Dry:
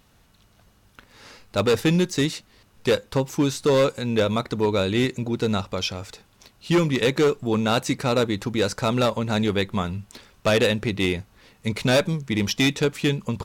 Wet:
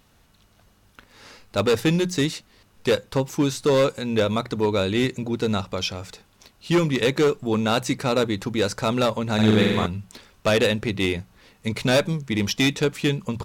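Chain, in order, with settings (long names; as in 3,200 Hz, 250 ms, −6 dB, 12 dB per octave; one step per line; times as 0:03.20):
mains-hum notches 60/120/180 Hz
0:09.34–0:09.86: flutter between parallel walls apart 7.9 metres, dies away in 1.3 s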